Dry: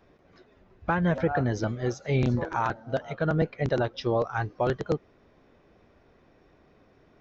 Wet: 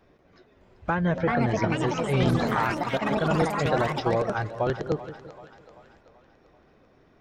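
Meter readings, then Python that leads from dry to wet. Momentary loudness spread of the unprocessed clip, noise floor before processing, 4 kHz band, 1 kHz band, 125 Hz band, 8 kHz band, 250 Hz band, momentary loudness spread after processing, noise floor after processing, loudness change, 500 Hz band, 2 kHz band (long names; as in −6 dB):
6 LU, −61 dBFS, +6.0 dB, +4.0 dB, +1.0 dB, can't be measured, +2.5 dB, 7 LU, −60 dBFS, +2.5 dB, +2.0 dB, +3.5 dB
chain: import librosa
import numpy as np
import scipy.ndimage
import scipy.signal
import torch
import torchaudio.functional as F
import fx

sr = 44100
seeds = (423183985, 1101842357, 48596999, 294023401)

y = fx.echo_split(x, sr, split_hz=590.0, low_ms=172, high_ms=386, feedback_pct=52, wet_db=-13.0)
y = fx.echo_pitch(y, sr, ms=610, semitones=5, count=3, db_per_echo=-3.0)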